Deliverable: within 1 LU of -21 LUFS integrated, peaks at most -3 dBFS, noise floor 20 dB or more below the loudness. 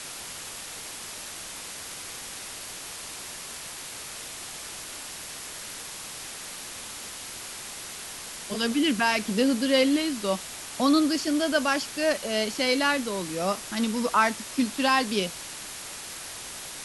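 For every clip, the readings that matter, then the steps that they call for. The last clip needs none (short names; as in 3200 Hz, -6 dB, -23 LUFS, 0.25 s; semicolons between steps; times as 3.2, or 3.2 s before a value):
noise floor -39 dBFS; noise floor target -49 dBFS; loudness -28.5 LUFS; peak -8.5 dBFS; loudness target -21.0 LUFS
-> noise print and reduce 10 dB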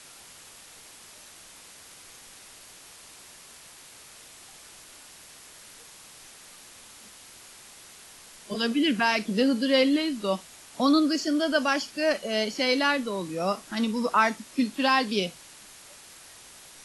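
noise floor -49 dBFS; loudness -25.5 LUFS; peak -8.5 dBFS; loudness target -21.0 LUFS
-> gain +4.5 dB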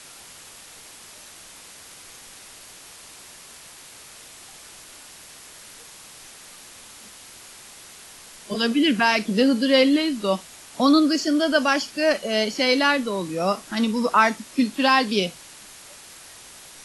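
loudness -21.0 LUFS; peak -4.0 dBFS; noise floor -45 dBFS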